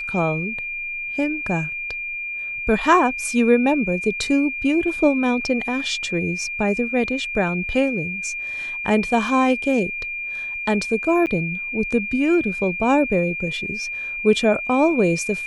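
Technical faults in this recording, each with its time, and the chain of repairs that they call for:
tone 2400 Hz -26 dBFS
11.26–11.27 gap 9 ms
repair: notch 2400 Hz, Q 30; interpolate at 11.26, 9 ms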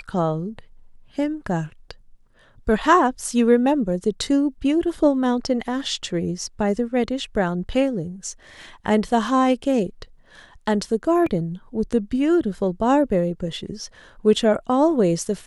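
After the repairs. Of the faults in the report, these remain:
none

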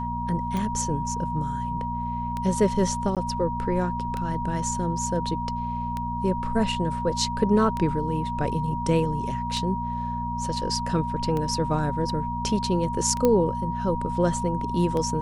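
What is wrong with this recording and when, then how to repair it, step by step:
hum 60 Hz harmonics 4 -32 dBFS
tick 33 1/3 rpm -17 dBFS
tone 950 Hz -29 dBFS
3.15–3.17 gap 17 ms
13.25 pop -9 dBFS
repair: de-click; de-hum 60 Hz, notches 4; notch 950 Hz, Q 30; interpolate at 3.15, 17 ms

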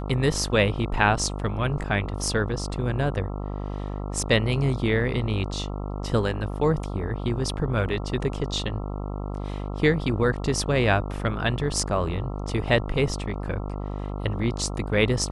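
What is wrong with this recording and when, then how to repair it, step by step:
buzz 50 Hz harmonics 27 -31 dBFS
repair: de-hum 50 Hz, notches 27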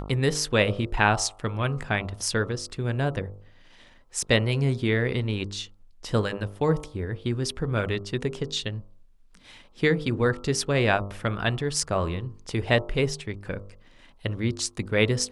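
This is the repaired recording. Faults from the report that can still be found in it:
none

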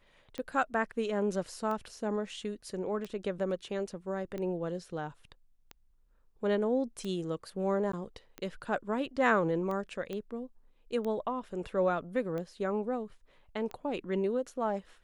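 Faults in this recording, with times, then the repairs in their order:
tick 45 rpm -26 dBFS
7.92–7.93 gap 14 ms
10.13 pop -25 dBFS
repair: de-click; interpolate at 7.92, 14 ms

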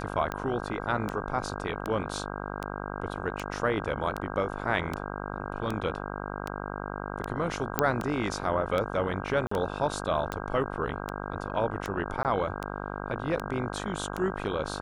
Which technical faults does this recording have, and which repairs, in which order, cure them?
buzz 50 Hz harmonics 32 -36 dBFS
tick 78 rpm -17 dBFS
7.79 pop -7 dBFS
9.47–9.51 gap 44 ms
12.23–12.25 gap 18 ms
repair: de-click; de-hum 50 Hz, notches 32; interpolate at 9.47, 44 ms; interpolate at 12.23, 18 ms

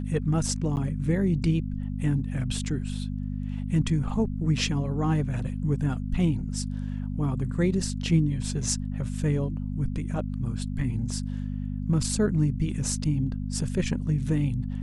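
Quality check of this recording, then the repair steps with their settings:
hum 50 Hz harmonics 5 -31 dBFS
0.76–0.77 gap 9.7 ms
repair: de-hum 50 Hz, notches 5; interpolate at 0.76, 9.7 ms

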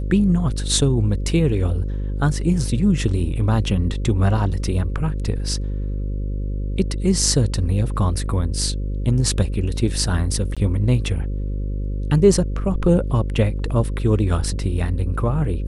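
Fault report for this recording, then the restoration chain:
buzz 50 Hz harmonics 11 -24 dBFS
10.55–10.57 gap 16 ms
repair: de-hum 50 Hz, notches 11; interpolate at 10.55, 16 ms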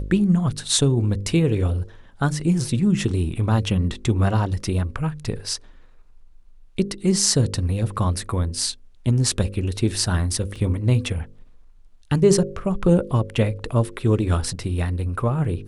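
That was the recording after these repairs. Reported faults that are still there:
none

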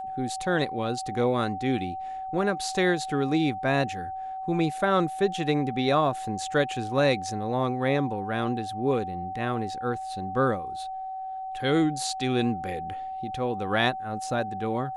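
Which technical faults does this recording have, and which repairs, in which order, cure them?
tone 760 Hz -32 dBFS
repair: notch 760 Hz, Q 30

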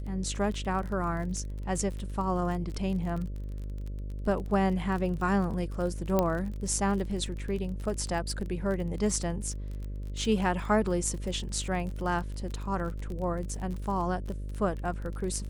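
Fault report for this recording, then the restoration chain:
buzz 50 Hz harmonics 12 -36 dBFS
crackle 31/s -35 dBFS
6.19 pop -12 dBFS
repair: de-click; de-hum 50 Hz, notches 12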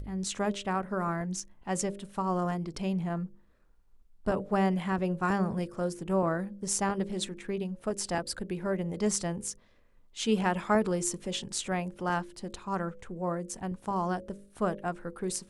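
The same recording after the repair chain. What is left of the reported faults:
none

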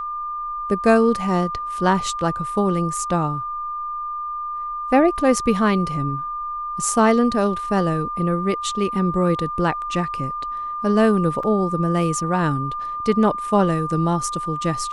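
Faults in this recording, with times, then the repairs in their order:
tone 1200 Hz -25 dBFS
11.43 gap 3.9 ms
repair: notch 1200 Hz, Q 30; interpolate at 11.43, 3.9 ms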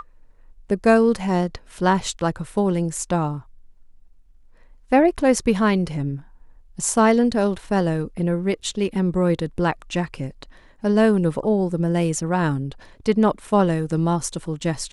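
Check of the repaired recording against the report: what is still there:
none

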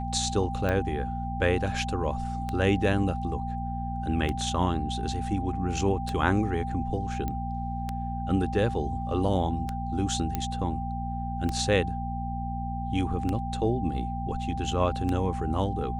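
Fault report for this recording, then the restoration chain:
hum 60 Hz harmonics 4 -33 dBFS
tick 33 1/3 rpm -17 dBFS
tone 790 Hz -34 dBFS
7.28 pop -19 dBFS
10.35 pop -14 dBFS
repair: de-click; notch 790 Hz, Q 30; de-hum 60 Hz, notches 4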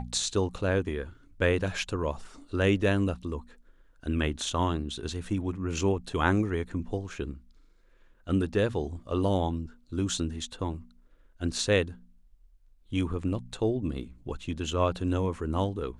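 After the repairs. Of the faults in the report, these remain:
none

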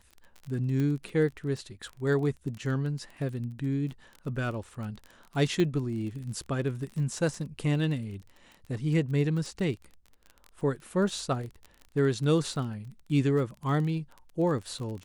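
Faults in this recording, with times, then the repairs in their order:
crackle 25/s -36 dBFS
0.8 pop -21 dBFS
5.6 pop -17 dBFS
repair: de-click

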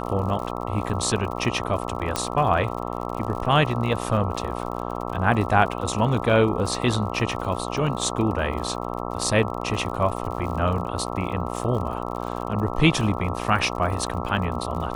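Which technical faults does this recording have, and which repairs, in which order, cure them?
buzz 60 Hz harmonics 22 -30 dBFS
crackle 58/s -32 dBFS
2.16 pop -8 dBFS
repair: de-click; de-hum 60 Hz, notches 22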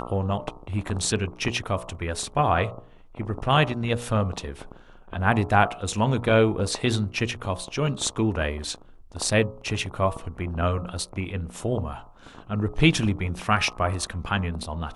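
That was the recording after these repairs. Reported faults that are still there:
none

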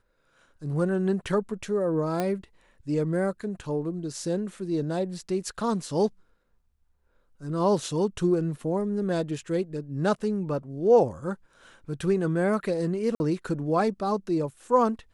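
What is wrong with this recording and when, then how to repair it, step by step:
2.2 pop -14 dBFS
13.15–13.2 gap 51 ms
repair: de-click; interpolate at 13.15, 51 ms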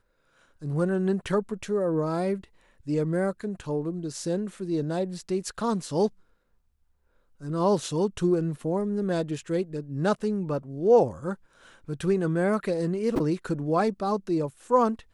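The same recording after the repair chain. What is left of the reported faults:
none

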